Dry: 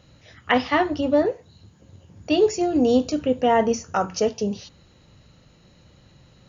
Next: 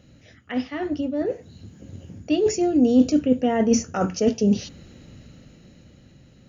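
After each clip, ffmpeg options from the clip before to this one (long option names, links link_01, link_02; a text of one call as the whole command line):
ffmpeg -i in.wav -af "areverse,acompressor=threshold=-26dB:ratio=12,areverse,equalizer=frequency=250:width_type=o:width=0.67:gain=7,equalizer=frequency=1000:width_type=o:width=0.67:gain=-10,equalizer=frequency=4000:width_type=o:width=0.67:gain=-5,dynaudnorm=framelen=230:gausssize=13:maxgain=8.5dB" out.wav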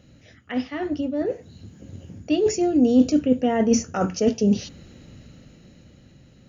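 ffmpeg -i in.wav -af anull out.wav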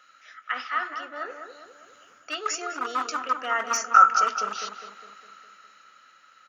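ffmpeg -i in.wav -filter_complex "[0:a]asoftclip=type=hard:threshold=-13dB,highpass=frequency=1300:width_type=q:width=13,asplit=2[link_01][link_02];[link_02]adelay=204,lowpass=frequency=1700:poles=1,volume=-6dB,asplit=2[link_03][link_04];[link_04]adelay=204,lowpass=frequency=1700:poles=1,volume=0.54,asplit=2[link_05][link_06];[link_06]adelay=204,lowpass=frequency=1700:poles=1,volume=0.54,asplit=2[link_07][link_08];[link_08]adelay=204,lowpass=frequency=1700:poles=1,volume=0.54,asplit=2[link_09][link_10];[link_10]adelay=204,lowpass=frequency=1700:poles=1,volume=0.54,asplit=2[link_11][link_12];[link_12]adelay=204,lowpass=frequency=1700:poles=1,volume=0.54,asplit=2[link_13][link_14];[link_14]adelay=204,lowpass=frequency=1700:poles=1,volume=0.54[link_15];[link_01][link_03][link_05][link_07][link_09][link_11][link_13][link_15]amix=inputs=8:normalize=0" out.wav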